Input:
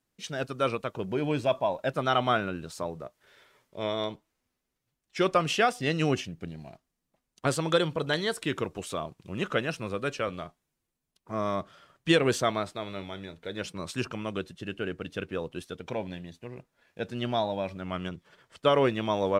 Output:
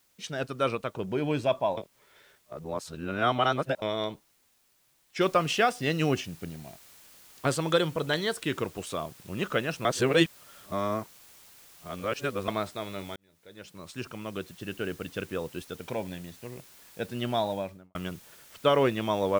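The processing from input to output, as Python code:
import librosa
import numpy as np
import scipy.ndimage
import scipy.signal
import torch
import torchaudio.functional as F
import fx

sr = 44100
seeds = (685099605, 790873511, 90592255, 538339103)

y = fx.noise_floor_step(x, sr, seeds[0], at_s=5.21, before_db=-68, after_db=-54, tilt_db=0.0)
y = fx.studio_fade_out(y, sr, start_s=17.5, length_s=0.45)
y = fx.edit(y, sr, fx.reverse_span(start_s=1.77, length_s=2.05),
    fx.reverse_span(start_s=9.85, length_s=2.63),
    fx.fade_in_span(start_s=13.16, length_s=1.63), tone=tone)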